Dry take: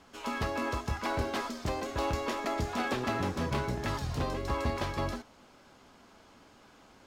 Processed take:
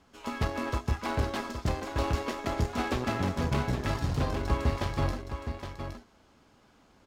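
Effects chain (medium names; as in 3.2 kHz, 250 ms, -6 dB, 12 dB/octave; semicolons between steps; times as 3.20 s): bass shelf 200 Hz +7 dB; Chebyshev shaper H 7 -21 dB, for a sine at -15 dBFS; saturation -20.5 dBFS, distortion -16 dB; delay 817 ms -8 dB; trim +2.5 dB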